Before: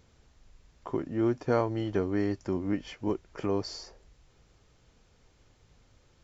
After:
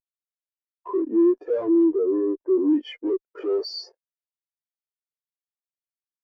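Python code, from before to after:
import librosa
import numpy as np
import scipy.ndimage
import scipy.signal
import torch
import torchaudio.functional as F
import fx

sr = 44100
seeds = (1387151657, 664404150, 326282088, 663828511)

y = scipy.signal.sosfilt(scipy.signal.butter(4, 340.0, 'highpass', fs=sr, output='sos'), x)
y = fx.fuzz(y, sr, gain_db=50.0, gate_db=-58.0)
y = fx.lowpass(y, sr, hz=1800.0, slope=12, at=(1.86, 2.58))
y = fx.spectral_expand(y, sr, expansion=2.5)
y = y * 10.0 ** (-1.5 / 20.0)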